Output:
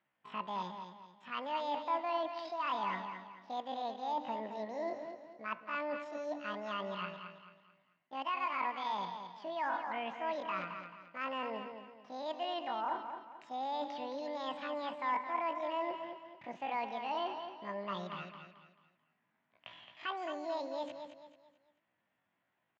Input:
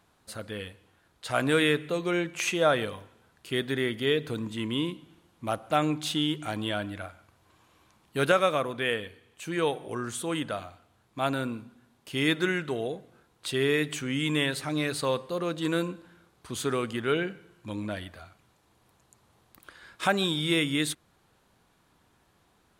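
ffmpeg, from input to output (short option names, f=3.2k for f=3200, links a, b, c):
-af "agate=range=-18dB:threshold=-53dB:ratio=16:detection=peak,areverse,acompressor=threshold=-38dB:ratio=8,areverse,asetrate=85689,aresample=44100,atempo=0.514651,highpass=120,equalizer=f=420:t=q:w=4:g=-8,equalizer=f=670:t=q:w=4:g=4,equalizer=f=1k:t=q:w=4:g=7,equalizer=f=1.8k:t=q:w=4:g=5,lowpass=f=3.3k:w=0.5412,lowpass=f=3.3k:w=1.3066,aecho=1:1:219|438|657|876:0.398|0.143|0.0516|0.0186,volume=1dB"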